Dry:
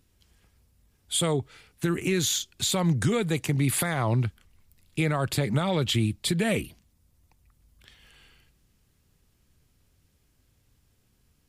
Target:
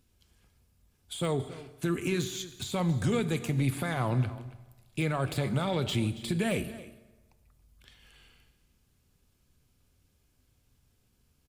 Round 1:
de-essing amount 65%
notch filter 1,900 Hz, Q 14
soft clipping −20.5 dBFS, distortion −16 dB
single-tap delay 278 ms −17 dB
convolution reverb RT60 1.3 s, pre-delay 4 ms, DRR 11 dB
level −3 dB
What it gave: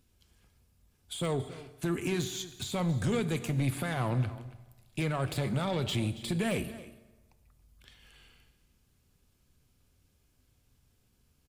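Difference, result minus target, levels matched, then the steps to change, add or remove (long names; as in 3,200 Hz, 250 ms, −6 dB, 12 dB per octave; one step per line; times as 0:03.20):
soft clipping: distortion +10 dB
change: soft clipping −14 dBFS, distortion −25 dB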